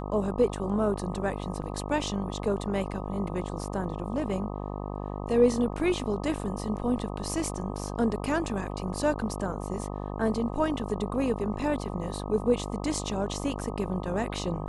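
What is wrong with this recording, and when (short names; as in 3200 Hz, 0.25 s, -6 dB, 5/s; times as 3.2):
buzz 50 Hz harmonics 25 -35 dBFS
1.62–1.63 gap 5.7 ms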